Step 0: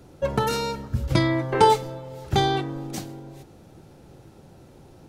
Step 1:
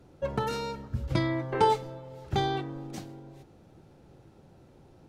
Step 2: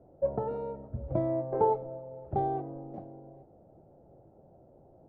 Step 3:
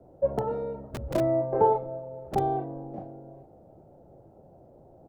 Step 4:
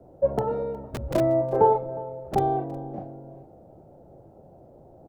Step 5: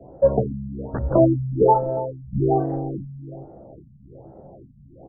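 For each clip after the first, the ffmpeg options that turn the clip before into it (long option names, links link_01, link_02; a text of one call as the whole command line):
ffmpeg -i in.wav -af "highshelf=frequency=6300:gain=-9,volume=-6.5dB" out.wav
ffmpeg -i in.wav -af "lowpass=frequency=650:width_type=q:width=4.2,volume=-5.5dB" out.wav
ffmpeg -i in.wav -filter_complex "[0:a]acrossover=split=160|620[link_01][link_02][link_03];[link_01]aeval=exprs='(mod(47.3*val(0)+1,2)-1)/47.3':channel_layout=same[link_04];[link_03]asplit=2[link_05][link_06];[link_06]adelay=35,volume=-3dB[link_07];[link_05][link_07]amix=inputs=2:normalize=0[link_08];[link_04][link_02][link_08]amix=inputs=3:normalize=0,volume=4dB" out.wav
ffmpeg -i in.wav -af "aecho=1:1:361:0.0891,volume=3dB" out.wav
ffmpeg -i in.wav -filter_complex "[0:a]asplit=2[link_01][link_02];[link_02]adelay=15,volume=-5dB[link_03];[link_01][link_03]amix=inputs=2:normalize=0,afftfilt=real='re*lt(b*sr/1024,220*pow(2100/220,0.5+0.5*sin(2*PI*1.2*pts/sr)))':imag='im*lt(b*sr/1024,220*pow(2100/220,0.5+0.5*sin(2*PI*1.2*pts/sr)))':win_size=1024:overlap=0.75,volume=5.5dB" out.wav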